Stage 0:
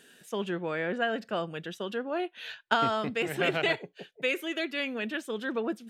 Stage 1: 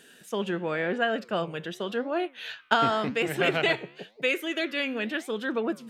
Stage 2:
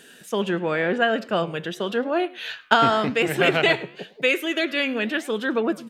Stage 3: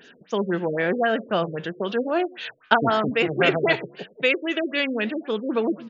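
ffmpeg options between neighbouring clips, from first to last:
-af "flanger=delay=5.9:depth=9.3:regen=89:speed=0.92:shape=sinusoidal,volume=2.37"
-af "aecho=1:1:105:0.0794,volume=1.88"
-af "afftfilt=real='re*lt(b*sr/1024,550*pow(7400/550,0.5+0.5*sin(2*PI*3.8*pts/sr)))':imag='im*lt(b*sr/1024,550*pow(7400/550,0.5+0.5*sin(2*PI*3.8*pts/sr)))':win_size=1024:overlap=0.75"

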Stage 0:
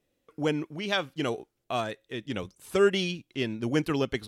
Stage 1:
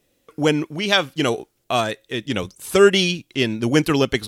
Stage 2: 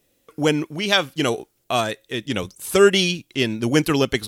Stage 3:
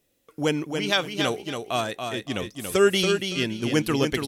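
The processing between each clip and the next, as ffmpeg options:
-af "highshelf=f=3600:g=6.5,volume=2.82"
-af "crystalizer=i=0.5:c=0,volume=0.891"
-af "aecho=1:1:282|564|846:0.501|0.125|0.0313,volume=0.562"

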